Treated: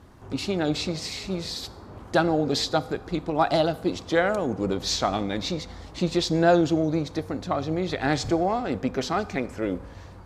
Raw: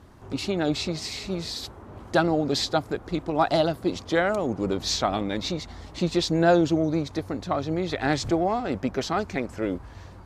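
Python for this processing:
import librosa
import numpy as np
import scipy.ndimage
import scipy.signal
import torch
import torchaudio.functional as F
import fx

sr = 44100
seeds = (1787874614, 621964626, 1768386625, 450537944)

y = fx.rev_fdn(x, sr, rt60_s=0.89, lf_ratio=1.0, hf_ratio=0.9, size_ms=12.0, drr_db=15.0)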